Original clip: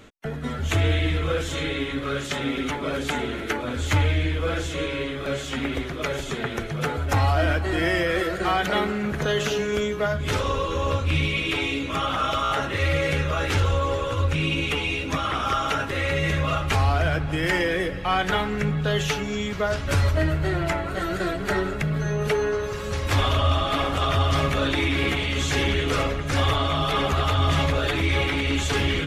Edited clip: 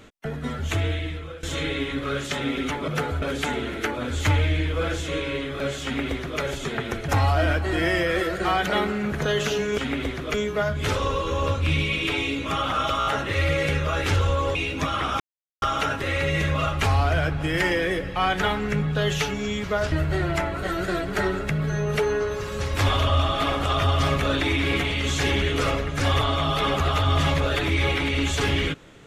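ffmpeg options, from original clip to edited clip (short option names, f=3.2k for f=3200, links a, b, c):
-filter_complex "[0:a]asplit=10[a][b][c][d][e][f][g][h][i][j];[a]atrim=end=1.43,asetpts=PTS-STARTPTS,afade=t=out:st=0.46:d=0.97:silence=0.11885[k];[b]atrim=start=1.43:end=2.882,asetpts=PTS-STARTPTS,afade=t=in:d=0.004:c=hsin:silence=0.11885[l];[c]atrim=start=6.738:end=7.082[m];[d]atrim=start=2.878:end=6.742[n];[e]atrim=start=7.078:end=9.782[o];[f]atrim=start=5.498:end=6.062[p];[g]atrim=start=9.778:end=13.992[q];[h]atrim=start=14.858:end=15.51,asetpts=PTS-STARTPTS,afade=t=out:st=0.648:d=0.004:c=hsin,apad=pad_dur=0.42[r];[i]atrim=start=15.51:end=19.812,asetpts=PTS-STARTPTS,afade=t=in:d=0.004:c=hsin[s];[j]atrim=start=20.238[t];[k][l]concat=n=2:v=0:a=1[u];[u][m]acrossfade=d=0.004:c1=hsin:c2=hsin[v];[v][n]acrossfade=d=0.004:c1=hsin:c2=hsin[w];[w][o]acrossfade=d=0.004:c1=hsin:c2=hsin[x];[x][p]acrossfade=d=0.004:c1=hsin:c2=hsin[y];[y][q]acrossfade=d=0.004:c1=hsin:c2=hsin[z];[r][s]concat=n=2:v=0:a=1[aa];[z][aa]acrossfade=d=0.004:c1=hsin:c2=hsin[ab];[ab][t]acrossfade=d=0.004:c1=hsin:c2=hsin"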